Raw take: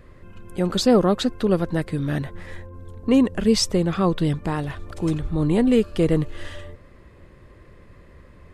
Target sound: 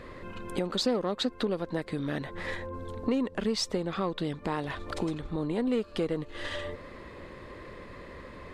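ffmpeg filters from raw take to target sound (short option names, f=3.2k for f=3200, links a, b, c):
-af "aeval=exprs='0.531*(cos(1*acos(clip(val(0)/0.531,-1,1)))-cos(1*PI/2))+0.0168*(cos(8*acos(clip(val(0)/0.531,-1,1)))-cos(8*PI/2))':c=same,acompressor=threshold=-33dB:ratio=6,equalizer=f=250:t=o:w=1:g=7,equalizer=f=500:t=o:w=1:g=8,equalizer=f=1k:t=o:w=1:g=9,equalizer=f=2k:t=o:w=1:g=7,equalizer=f=4k:t=o:w=1:g=11,equalizer=f=8k:t=o:w=1:g=4,volume=-3dB"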